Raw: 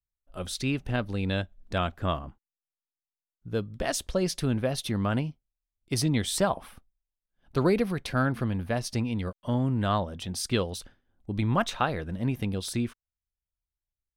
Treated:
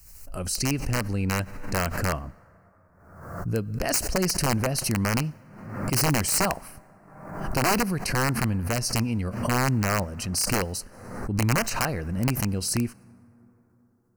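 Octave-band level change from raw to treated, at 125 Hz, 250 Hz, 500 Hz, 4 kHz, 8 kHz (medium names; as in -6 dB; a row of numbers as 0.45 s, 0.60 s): +3.0 dB, +1.5 dB, 0.0 dB, +3.5 dB, +9.5 dB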